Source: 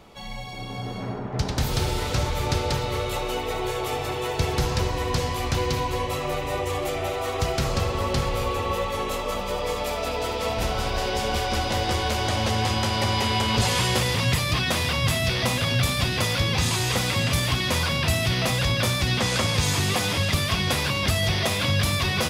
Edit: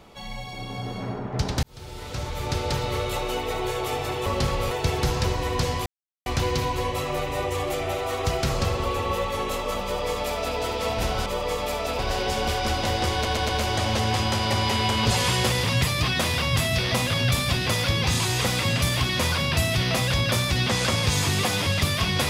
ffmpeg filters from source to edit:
ffmpeg -i in.wav -filter_complex "[0:a]asplit=11[link_01][link_02][link_03][link_04][link_05][link_06][link_07][link_08][link_09][link_10][link_11];[link_01]atrim=end=1.63,asetpts=PTS-STARTPTS,afade=type=out:start_time=1.626:duration=0.004:curve=hsin[link_12];[link_02]atrim=start=1.63:end=4.262,asetpts=PTS-STARTPTS,afade=type=in:duration=1.23[link_13];[link_03]atrim=start=7.998:end=8.452[link_14];[link_04]atrim=start=4.258:end=5.41,asetpts=PTS-STARTPTS,afade=type=out:start_time=1.148:duration=0.004:curve=hsin,apad=pad_dur=0.4[link_15];[link_05]atrim=start=5.41:end=8.002,asetpts=PTS-STARTPTS,afade=type=in:duration=0.004:curve=hsin[link_16];[link_06]atrim=start=8.448:end=10.862[link_17];[link_07]atrim=start=9.438:end=10.172[link_18];[link_08]atrim=start=10.858:end=12.122[link_19];[link_09]atrim=start=11.998:end=12.122[link_20];[link_10]atrim=start=11.998:end=12.122[link_21];[link_11]atrim=start=11.998[link_22];[link_12][link_13]concat=n=2:v=0:a=1[link_23];[link_23][link_14]acrossfade=duration=0.004:curve1=hsin:curve2=hsin[link_24];[link_15][link_16]concat=n=2:v=0:a=1[link_25];[link_24][link_25]acrossfade=duration=0.004:curve1=hsin:curve2=hsin[link_26];[link_26][link_17]acrossfade=duration=0.004:curve1=hsin:curve2=hsin[link_27];[link_27][link_18]acrossfade=duration=0.004:curve1=hsin:curve2=hsin[link_28];[link_28][link_19]acrossfade=duration=0.004:curve1=hsin:curve2=hsin[link_29];[link_29][link_20]acrossfade=duration=0.004:curve1=hsin:curve2=hsin[link_30];[link_30][link_21]acrossfade=duration=0.004:curve1=hsin:curve2=hsin[link_31];[link_31][link_22]acrossfade=duration=0.004:curve1=hsin:curve2=hsin" out.wav

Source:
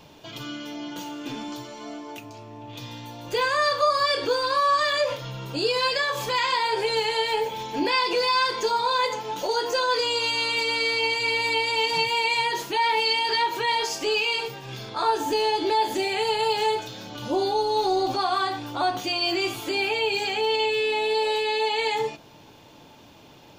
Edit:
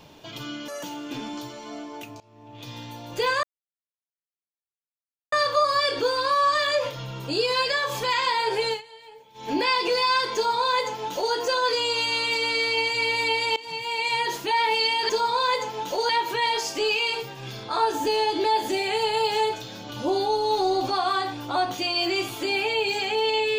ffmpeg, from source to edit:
ffmpeg -i in.wav -filter_complex "[0:a]asplit=10[link_01][link_02][link_03][link_04][link_05][link_06][link_07][link_08][link_09][link_10];[link_01]atrim=end=0.684[link_11];[link_02]atrim=start=0.68:end=0.98,asetpts=PTS-STARTPTS,asetrate=86877,aresample=44100[link_12];[link_03]atrim=start=0.976:end=2.35,asetpts=PTS-STARTPTS,afade=type=out:start_time=1.37:duration=0.004:curve=hsin:silence=0.0944061[link_13];[link_04]atrim=start=2.35:end=3.58,asetpts=PTS-STARTPTS,afade=type=in:duration=0.57:silence=0.0944061,afade=type=out:start_time=1.226:duration=0.004:curve=hsin,apad=pad_dur=1.89[link_14];[link_05]atrim=start=3.58:end=7.08,asetpts=PTS-STARTPTS,afade=type=in:duration=0.004:curve=hsin,afade=type=out:start_time=3.35:duration=0.15:silence=0.0794328[link_15];[link_06]atrim=start=7.08:end=7.6,asetpts=PTS-STARTPTS,volume=-22dB[link_16];[link_07]atrim=start=7.6:end=11.82,asetpts=PTS-STARTPTS,afade=type=in:duration=0.15:silence=0.0794328,afade=type=out:start_time=4.216:duration=0.004:curve=hsin:silence=0.1[link_17];[link_08]atrim=start=11.82:end=13.352,asetpts=PTS-STARTPTS,afade=type=in:duration=0.66:silence=0.1[link_18];[link_09]atrim=start=8.598:end=9.602[link_19];[link_10]atrim=start=13.348[link_20];[link_11][link_12]acrossfade=duration=0.004:curve1=hsin:curve2=hsin[link_21];[link_13][link_14][link_15][link_16][link_17][link_18]concat=n=6:v=0:a=1[link_22];[link_21][link_22]acrossfade=duration=0.004:curve1=hsin:curve2=hsin[link_23];[link_23][link_19]acrossfade=duration=0.004:curve1=hsin:curve2=hsin[link_24];[link_24][link_20]acrossfade=duration=0.004:curve1=hsin:curve2=hsin" out.wav

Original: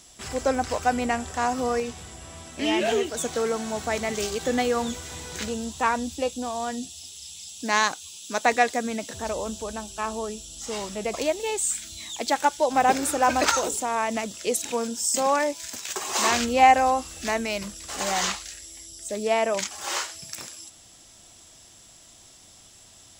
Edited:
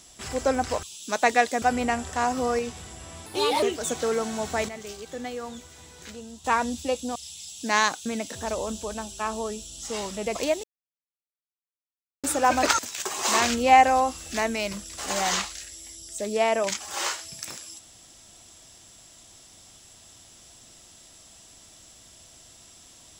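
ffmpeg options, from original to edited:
ffmpeg -i in.wav -filter_complex "[0:a]asplit=12[link_01][link_02][link_03][link_04][link_05][link_06][link_07][link_08][link_09][link_10][link_11][link_12];[link_01]atrim=end=0.832[link_13];[link_02]atrim=start=8.048:end=8.842[link_14];[link_03]atrim=start=0.828:end=2.474[link_15];[link_04]atrim=start=2.47:end=2.96,asetpts=PTS-STARTPTS,asetrate=59094,aresample=44100,atrim=end_sample=16126,asetpts=PTS-STARTPTS[link_16];[link_05]atrim=start=2.956:end=4.022[link_17];[link_06]atrim=start=4.018:end=5.782,asetpts=PTS-STARTPTS,volume=-10.5dB[link_18];[link_07]atrim=start=5.778:end=6.492[link_19];[link_08]atrim=start=7.148:end=8.052[link_20];[link_09]atrim=start=8.838:end=11.42,asetpts=PTS-STARTPTS,afade=type=out:start_time=2.578:duration=0.004:curve=hsin[link_21];[link_10]atrim=start=11.42:end=13.02,asetpts=PTS-STARTPTS,volume=0[link_22];[link_11]atrim=start=13.02:end=13.572,asetpts=PTS-STARTPTS,afade=type=in:duration=0.004:curve=hsin[link_23];[link_12]atrim=start=15.688[link_24];[link_13][link_14]acrossfade=duration=0.004:curve1=hsin:curve2=hsin[link_25];[link_25][link_15]acrossfade=duration=0.004:curve1=hsin:curve2=hsin[link_26];[link_26][link_16]acrossfade=duration=0.004:curve1=hsin:curve2=hsin[link_27];[link_27][link_17]acrossfade=duration=0.004:curve1=hsin:curve2=hsin[link_28];[link_28][link_18]acrossfade=duration=0.004:curve1=hsin:curve2=hsin[link_29];[link_29][link_19]acrossfade=duration=0.004:curve1=hsin:curve2=hsin[link_30];[link_30][link_20]acrossfade=duration=0.004:curve1=hsin:curve2=hsin[link_31];[link_21][link_22][link_23]concat=n=3:v=0:a=1[link_32];[link_31][link_32]acrossfade=duration=0.004:curve1=hsin:curve2=hsin[link_33];[link_33][link_24]acrossfade=duration=0.004:curve1=hsin:curve2=hsin" out.wav

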